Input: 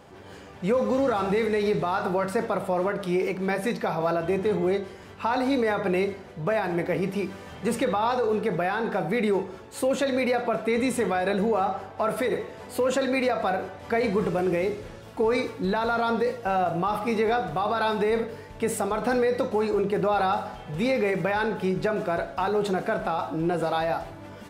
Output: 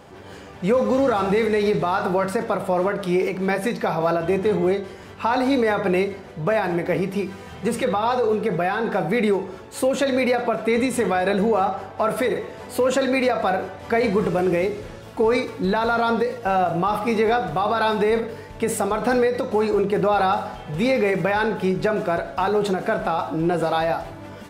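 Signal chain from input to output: 7.13–8.87 notch comb 290 Hz; ending taper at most 120 dB/s; gain +4.5 dB

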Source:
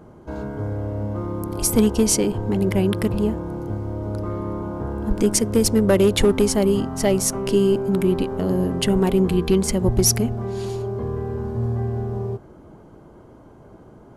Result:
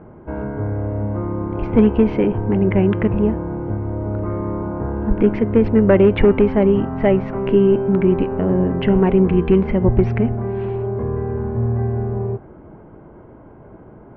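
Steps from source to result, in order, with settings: steep low-pass 2500 Hz 36 dB/oct; notch 1200 Hz, Q 23; de-hum 258.8 Hz, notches 12; gain +4 dB

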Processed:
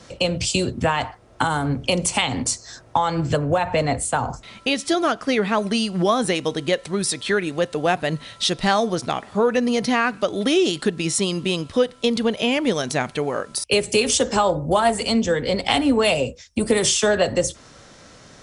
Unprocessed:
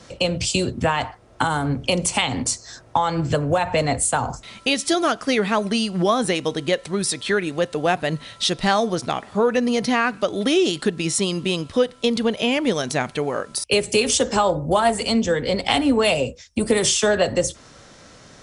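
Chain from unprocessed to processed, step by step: 3.37–5.58 high shelf 4800 Hz -6.5 dB

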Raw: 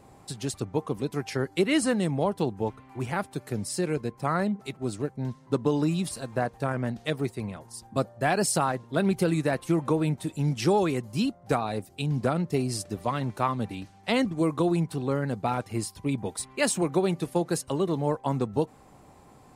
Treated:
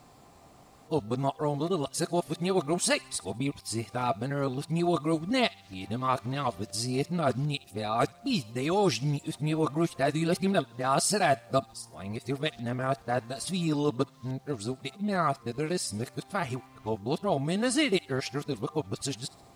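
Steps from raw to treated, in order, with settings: whole clip reversed; bit-crush 11-bit; bell 4300 Hz +6.5 dB 1.6 oct; small resonant body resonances 680/1200 Hz, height 10 dB, ringing for 85 ms; on a send: thin delay 68 ms, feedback 49%, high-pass 1700 Hz, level -20.5 dB; on the sum: gain -3 dB

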